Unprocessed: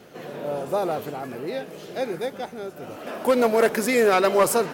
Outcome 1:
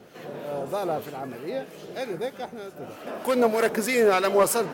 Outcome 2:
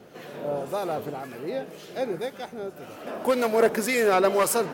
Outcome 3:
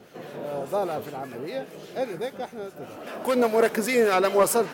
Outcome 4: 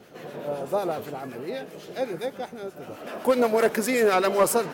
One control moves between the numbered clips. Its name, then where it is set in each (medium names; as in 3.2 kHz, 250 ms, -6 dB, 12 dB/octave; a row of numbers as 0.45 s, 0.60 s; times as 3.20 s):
harmonic tremolo, rate: 3.2 Hz, 1.9 Hz, 5 Hz, 7.9 Hz